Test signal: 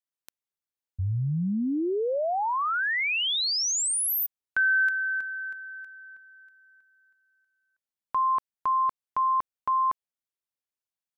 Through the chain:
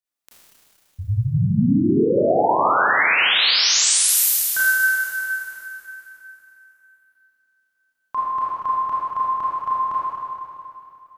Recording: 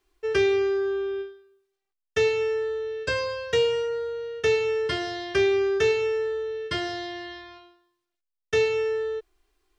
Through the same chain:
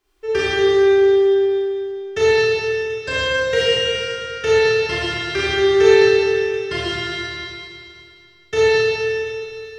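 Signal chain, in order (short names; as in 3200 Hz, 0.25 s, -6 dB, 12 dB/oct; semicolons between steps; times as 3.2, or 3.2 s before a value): Schroeder reverb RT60 2.7 s, combs from 26 ms, DRR -9 dB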